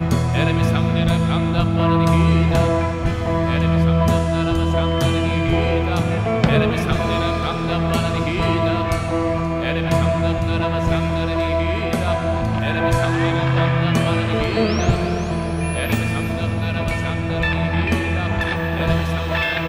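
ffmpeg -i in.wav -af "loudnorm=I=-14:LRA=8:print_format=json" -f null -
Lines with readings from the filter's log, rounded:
"input_i" : "-19.4",
"input_tp" : "-2.4",
"input_lra" : "2.9",
"input_thresh" : "-29.4",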